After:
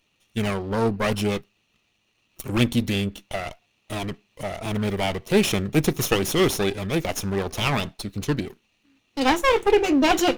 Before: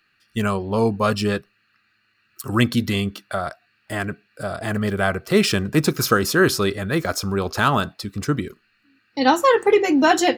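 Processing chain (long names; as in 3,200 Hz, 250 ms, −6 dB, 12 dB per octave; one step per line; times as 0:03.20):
lower of the sound and its delayed copy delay 0.32 ms
0:07.99–0:08.45: parametric band 4,300 Hz +8.5 dB 0.23 octaves
level −1.5 dB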